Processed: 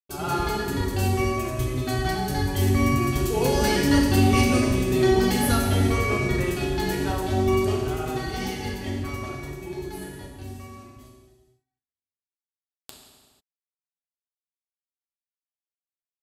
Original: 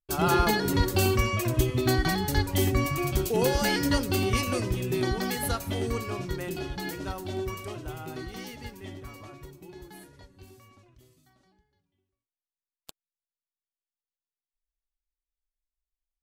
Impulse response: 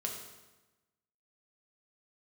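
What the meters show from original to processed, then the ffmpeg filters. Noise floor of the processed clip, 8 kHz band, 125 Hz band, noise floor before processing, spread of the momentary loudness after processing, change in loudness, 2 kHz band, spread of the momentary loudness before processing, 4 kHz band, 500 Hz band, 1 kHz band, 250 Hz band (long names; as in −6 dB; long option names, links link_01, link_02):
below −85 dBFS, +2.5 dB, +5.0 dB, below −85 dBFS, 15 LU, +4.0 dB, +3.0 dB, 18 LU, +2.0 dB, +4.5 dB, +3.5 dB, +6.5 dB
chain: -filter_complex "[0:a]dynaudnorm=framelen=310:gausssize=21:maxgain=13dB,agate=range=-46dB:threshold=-46dB:ratio=16:detection=peak[link_01];[1:a]atrim=start_sample=2205,afade=type=out:start_time=0.35:duration=0.01,atrim=end_sample=15876,asetrate=26460,aresample=44100[link_02];[link_01][link_02]afir=irnorm=-1:irlink=0,volume=-7.5dB"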